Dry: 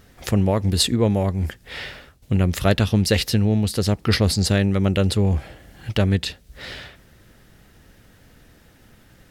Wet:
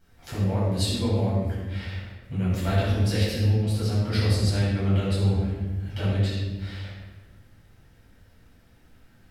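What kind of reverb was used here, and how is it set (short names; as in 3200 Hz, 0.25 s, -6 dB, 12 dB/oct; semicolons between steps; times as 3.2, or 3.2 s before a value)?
shoebox room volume 920 m³, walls mixed, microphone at 7.9 m; gain -20.5 dB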